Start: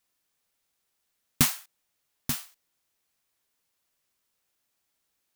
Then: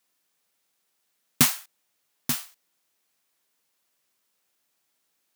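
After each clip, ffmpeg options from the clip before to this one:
-af "highpass=150,volume=1.5"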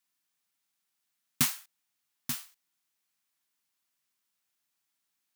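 -af "equalizer=f=490:w=1.5:g=-10.5,volume=0.447"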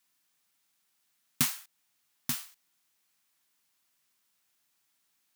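-af "acompressor=threshold=0.00708:ratio=1.5,volume=2.11"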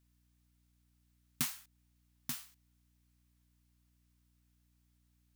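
-af "aeval=exprs='val(0)+0.000631*(sin(2*PI*60*n/s)+sin(2*PI*2*60*n/s)/2+sin(2*PI*3*60*n/s)/3+sin(2*PI*4*60*n/s)/4+sin(2*PI*5*60*n/s)/5)':c=same,volume=0.422"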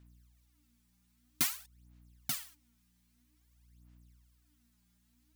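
-af "aphaser=in_gain=1:out_gain=1:delay=5:decay=0.73:speed=0.51:type=sinusoidal,volume=1.19"

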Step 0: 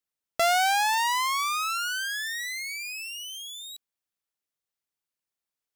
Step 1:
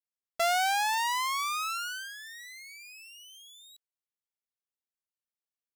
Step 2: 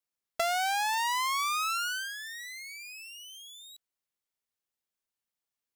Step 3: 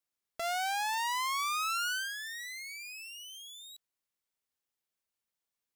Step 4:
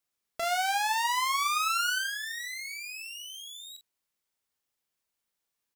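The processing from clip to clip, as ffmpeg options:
-af "agate=range=0.355:threshold=0.0316:ratio=16:detection=peak,volume=0.631"
-af "acompressor=threshold=0.0282:ratio=6,volume=1.58"
-af "alimiter=level_in=1.58:limit=0.0631:level=0:latency=1:release=133,volume=0.631"
-af "aecho=1:1:31|45:0.282|0.299,volume=1.58"

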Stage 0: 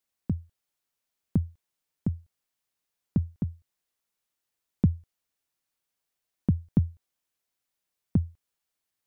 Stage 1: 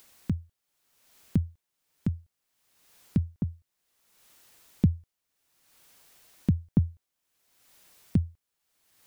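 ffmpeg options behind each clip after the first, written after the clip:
-af "acompressor=mode=upward:threshold=0.0126:ratio=2.5"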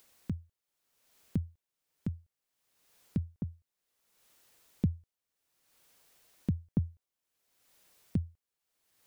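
-af "equalizer=f=490:w=1.9:g=3,volume=0.447"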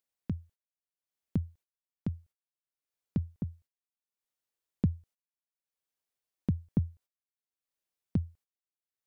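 -af "agate=range=0.0447:threshold=0.00126:ratio=16:detection=peak,volume=1.19"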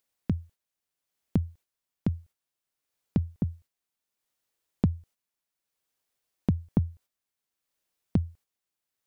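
-af "acompressor=threshold=0.0282:ratio=2,volume=2.51"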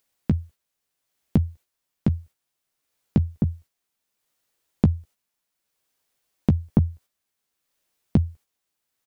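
-filter_complex "[0:a]asplit=2[s0][s1];[s1]adelay=14,volume=0.316[s2];[s0][s2]amix=inputs=2:normalize=0,volume=2"

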